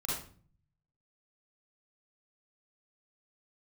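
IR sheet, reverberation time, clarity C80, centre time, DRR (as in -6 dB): 0.45 s, 6.0 dB, 56 ms, -6.5 dB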